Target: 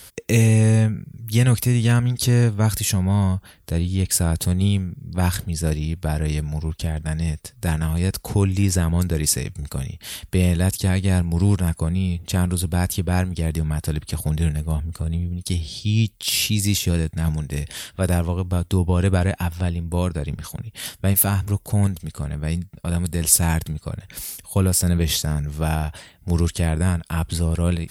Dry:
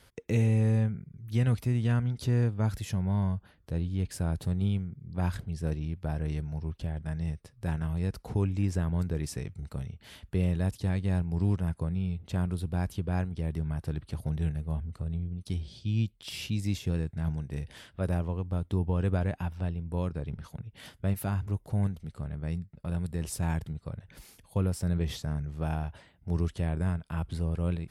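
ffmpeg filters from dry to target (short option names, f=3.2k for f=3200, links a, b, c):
-af "crystalizer=i=4:c=0,volume=9dB"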